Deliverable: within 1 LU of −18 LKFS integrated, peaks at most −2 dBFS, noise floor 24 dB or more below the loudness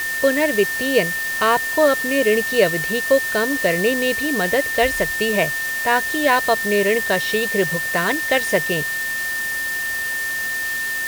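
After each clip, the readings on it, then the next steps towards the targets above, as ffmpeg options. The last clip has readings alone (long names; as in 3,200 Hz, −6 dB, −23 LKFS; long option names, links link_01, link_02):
interfering tone 1,800 Hz; level of the tone −22 dBFS; background noise floor −24 dBFS; target noise floor −43 dBFS; integrated loudness −18.5 LKFS; sample peak −3.5 dBFS; target loudness −18.0 LKFS
→ -af "bandreject=frequency=1800:width=30"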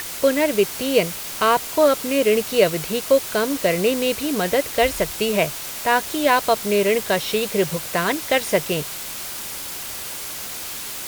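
interfering tone none found; background noise floor −32 dBFS; target noise floor −45 dBFS
→ -af "afftdn=noise_reduction=13:noise_floor=-32"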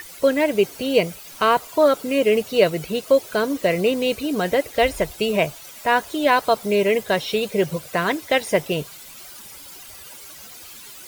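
background noise floor −41 dBFS; target noise floor −45 dBFS
→ -af "afftdn=noise_reduction=6:noise_floor=-41"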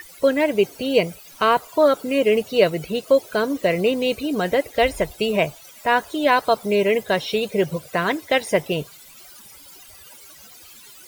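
background noise floor −45 dBFS; integrated loudness −21.0 LKFS; sample peak −3.0 dBFS; target loudness −18.0 LKFS
→ -af "volume=3dB,alimiter=limit=-2dB:level=0:latency=1"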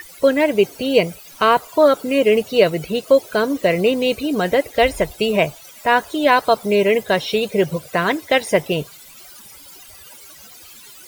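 integrated loudness −18.0 LKFS; sample peak −2.0 dBFS; background noise floor −42 dBFS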